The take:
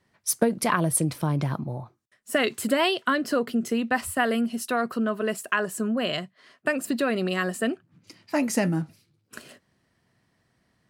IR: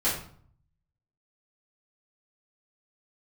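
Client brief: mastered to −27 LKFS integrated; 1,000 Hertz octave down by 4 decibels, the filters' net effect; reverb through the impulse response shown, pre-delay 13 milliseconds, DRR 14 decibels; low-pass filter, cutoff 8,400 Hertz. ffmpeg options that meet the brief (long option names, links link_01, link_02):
-filter_complex "[0:a]lowpass=8400,equalizer=frequency=1000:width_type=o:gain=-5.5,asplit=2[link_01][link_02];[1:a]atrim=start_sample=2205,adelay=13[link_03];[link_02][link_03]afir=irnorm=-1:irlink=0,volume=-24.5dB[link_04];[link_01][link_04]amix=inputs=2:normalize=0"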